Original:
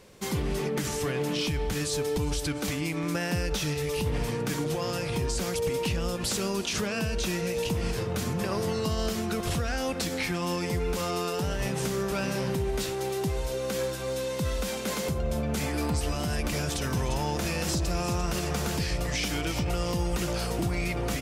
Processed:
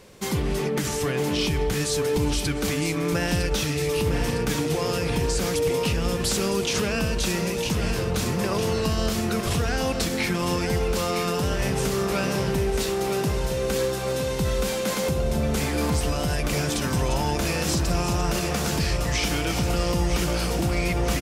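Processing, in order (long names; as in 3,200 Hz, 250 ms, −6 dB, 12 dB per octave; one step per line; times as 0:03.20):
repeating echo 957 ms, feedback 58%, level −8 dB
level +4 dB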